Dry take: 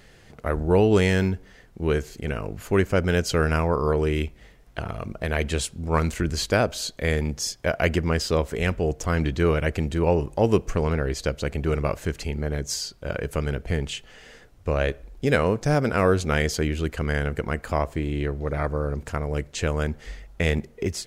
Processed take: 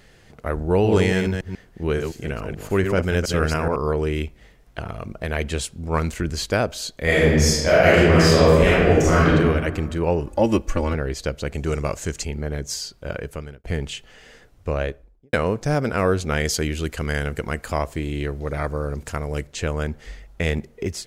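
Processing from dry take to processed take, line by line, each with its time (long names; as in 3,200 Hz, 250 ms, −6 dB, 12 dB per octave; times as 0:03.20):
0:00.70–0:03.76: delay that plays each chunk backwards 142 ms, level −5.5 dB
0:07.03–0:09.28: thrown reverb, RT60 1.6 s, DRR −9.5 dB
0:10.26–0:10.94: comb filter 3.5 ms, depth 99%
0:11.54–0:12.25: parametric band 7,000 Hz +13 dB 0.94 octaves
0:13.12–0:13.64: fade out
0:14.69–0:15.33: fade out and dull
0:16.45–0:19.47: parametric band 10,000 Hz +7.5 dB 2.7 octaves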